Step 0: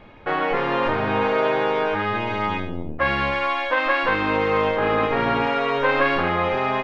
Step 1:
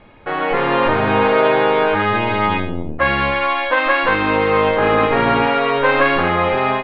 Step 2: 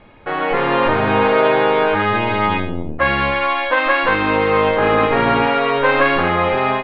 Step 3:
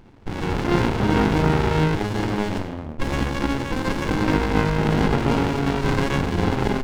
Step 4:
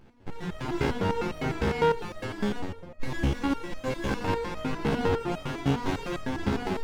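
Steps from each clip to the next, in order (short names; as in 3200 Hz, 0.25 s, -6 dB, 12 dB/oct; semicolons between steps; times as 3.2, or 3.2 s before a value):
steep low-pass 4400 Hz 36 dB/oct; AGC gain up to 8 dB
nothing audible
running maximum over 65 samples
reverb RT60 0.70 s, pre-delay 67 ms, DRR 8.5 dB; stepped resonator 9.9 Hz 68–630 Hz; gain +3 dB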